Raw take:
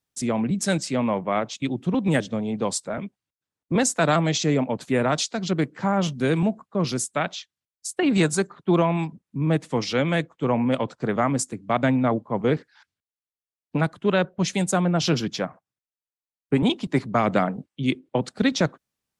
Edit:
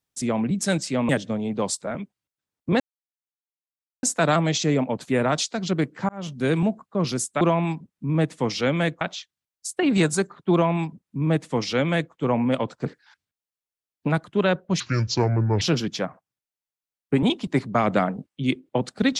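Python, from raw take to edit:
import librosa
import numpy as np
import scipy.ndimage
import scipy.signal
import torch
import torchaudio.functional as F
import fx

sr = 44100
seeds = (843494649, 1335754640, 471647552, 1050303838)

y = fx.edit(x, sr, fx.cut(start_s=1.09, length_s=1.03),
    fx.insert_silence(at_s=3.83, length_s=1.23),
    fx.fade_in_span(start_s=5.89, length_s=0.39),
    fx.duplicate(start_s=8.73, length_s=1.6, to_s=7.21),
    fx.cut(start_s=11.06, length_s=1.49),
    fx.speed_span(start_s=14.49, length_s=0.52, speed=0.64), tone=tone)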